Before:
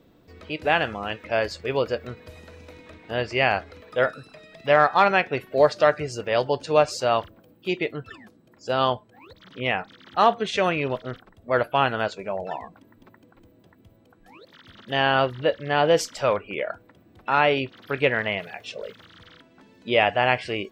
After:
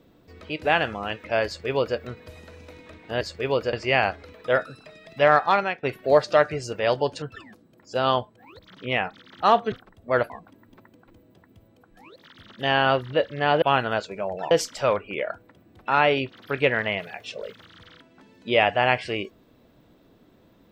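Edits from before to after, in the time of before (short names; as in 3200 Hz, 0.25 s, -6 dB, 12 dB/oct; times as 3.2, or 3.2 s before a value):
1.46–1.98 copy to 3.21
4.88–5.31 fade out, to -15 dB
6.7–7.96 cut
10.46–11.12 cut
11.7–12.59 move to 15.91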